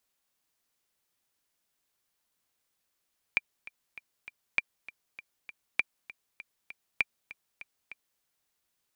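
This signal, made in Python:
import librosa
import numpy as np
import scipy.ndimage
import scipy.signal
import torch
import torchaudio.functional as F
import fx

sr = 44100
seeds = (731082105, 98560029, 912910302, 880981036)

y = fx.click_track(sr, bpm=198, beats=4, bars=4, hz=2370.0, accent_db=19.0, level_db=-11.0)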